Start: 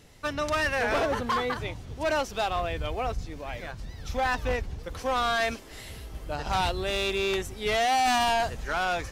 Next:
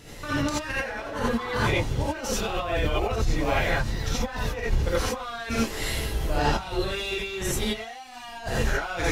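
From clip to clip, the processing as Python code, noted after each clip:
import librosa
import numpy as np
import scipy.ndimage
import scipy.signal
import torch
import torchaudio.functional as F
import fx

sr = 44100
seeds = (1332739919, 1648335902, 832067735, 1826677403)

y = fx.over_compress(x, sr, threshold_db=-33.0, ratio=-0.5)
y = fx.rev_gated(y, sr, seeds[0], gate_ms=110, shape='rising', drr_db=-7.5)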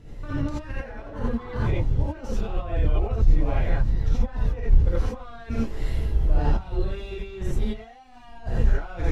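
y = fx.tilt_eq(x, sr, slope=-3.5)
y = F.gain(torch.from_numpy(y), -8.5).numpy()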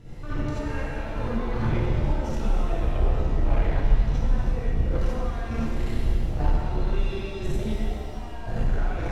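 y = 10.0 ** (-22.5 / 20.0) * np.tanh(x / 10.0 ** (-22.5 / 20.0))
y = fx.rev_shimmer(y, sr, seeds[1], rt60_s=2.2, semitones=7, shimmer_db=-8, drr_db=-1.5)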